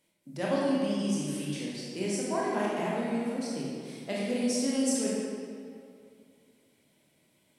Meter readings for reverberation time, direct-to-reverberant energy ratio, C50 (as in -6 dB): 2.4 s, -6.0 dB, -2.5 dB